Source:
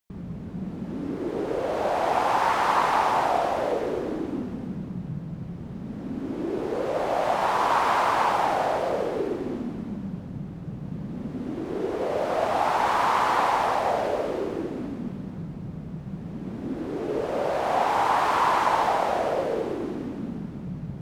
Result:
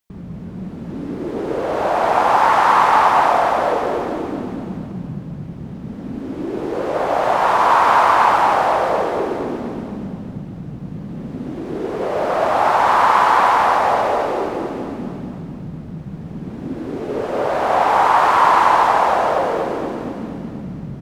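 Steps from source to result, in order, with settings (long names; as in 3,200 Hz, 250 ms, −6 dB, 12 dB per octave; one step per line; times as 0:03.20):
dynamic equaliser 1,200 Hz, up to +6 dB, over −34 dBFS, Q 0.88
on a send: repeating echo 234 ms, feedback 55%, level −6.5 dB
on the sum: level +3.5 dB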